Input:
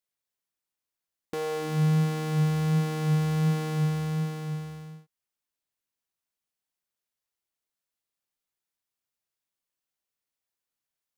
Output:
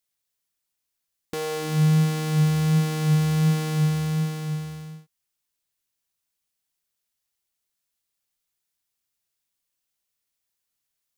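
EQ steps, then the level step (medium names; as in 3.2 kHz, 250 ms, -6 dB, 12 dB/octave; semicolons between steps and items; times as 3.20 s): bass shelf 180 Hz +7.5 dB; treble shelf 2.1 kHz +8.5 dB; 0.0 dB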